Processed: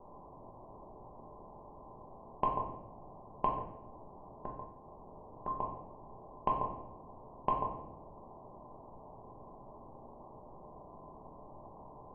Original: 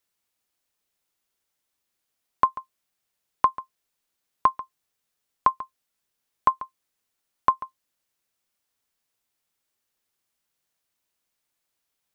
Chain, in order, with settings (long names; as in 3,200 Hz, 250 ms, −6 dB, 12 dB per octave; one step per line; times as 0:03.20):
compressor on every frequency bin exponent 0.4
Butterworth low-pass 850 Hz 48 dB per octave
0:03.48–0:05.48: downward compressor 3 to 1, threshold −45 dBFS, peak gain reduction 15 dB
soft clipping −15.5 dBFS, distortion −19 dB
rectangular room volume 220 cubic metres, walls mixed, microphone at 1.2 metres
level −1 dB